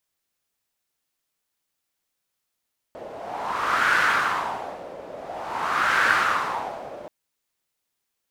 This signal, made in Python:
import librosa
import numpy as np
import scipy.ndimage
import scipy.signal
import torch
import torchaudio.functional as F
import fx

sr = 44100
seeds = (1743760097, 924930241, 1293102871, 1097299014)

y = fx.wind(sr, seeds[0], length_s=4.13, low_hz=560.0, high_hz=1500.0, q=3.8, gusts=2, swing_db=18.0)